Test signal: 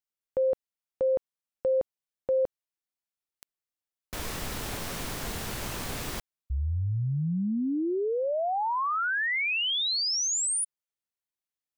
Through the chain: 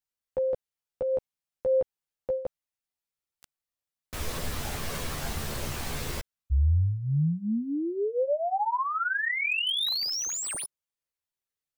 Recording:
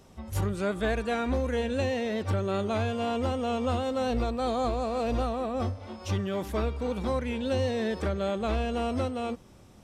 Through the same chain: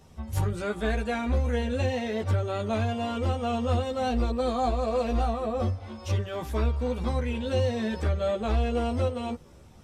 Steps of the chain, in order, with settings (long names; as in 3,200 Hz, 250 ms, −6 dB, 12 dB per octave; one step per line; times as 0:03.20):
multi-voice chorus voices 6, 0.42 Hz, delay 13 ms, depth 1.3 ms
slew-rate limiting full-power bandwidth 140 Hz
level +3 dB